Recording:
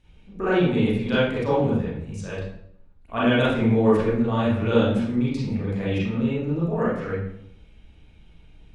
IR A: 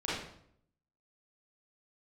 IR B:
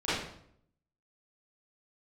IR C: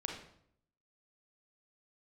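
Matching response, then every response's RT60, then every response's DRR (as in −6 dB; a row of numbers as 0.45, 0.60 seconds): A; 0.65, 0.65, 0.65 seconds; −9.0, −14.5, 1.0 decibels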